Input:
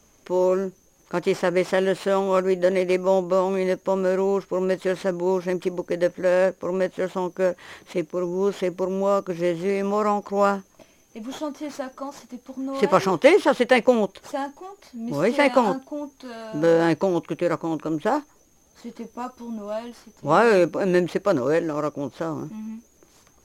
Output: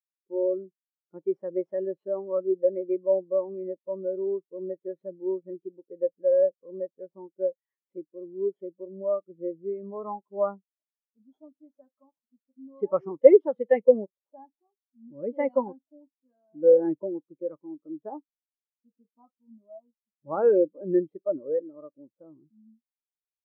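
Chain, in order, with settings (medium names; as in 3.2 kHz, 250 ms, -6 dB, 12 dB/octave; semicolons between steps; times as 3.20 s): spectral contrast expander 2.5:1; trim +1 dB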